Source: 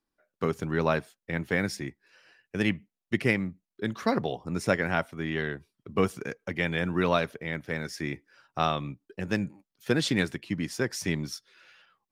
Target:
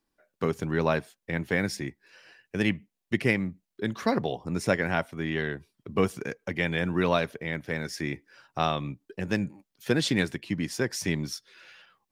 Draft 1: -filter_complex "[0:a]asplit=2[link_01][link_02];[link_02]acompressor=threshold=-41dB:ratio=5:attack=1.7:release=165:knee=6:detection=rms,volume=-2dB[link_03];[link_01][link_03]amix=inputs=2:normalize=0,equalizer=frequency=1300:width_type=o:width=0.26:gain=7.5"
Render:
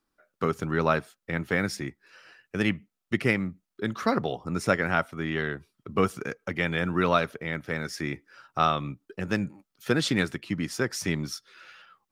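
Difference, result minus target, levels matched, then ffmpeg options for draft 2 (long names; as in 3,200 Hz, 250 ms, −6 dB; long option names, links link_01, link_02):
1,000 Hz band +3.0 dB
-filter_complex "[0:a]asplit=2[link_01][link_02];[link_02]acompressor=threshold=-41dB:ratio=5:attack=1.7:release=165:knee=6:detection=rms,volume=-2dB[link_03];[link_01][link_03]amix=inputs=2:normalize=0,equalizer=frequency=1300:width_type=o:width=0.26:gain=-3.5"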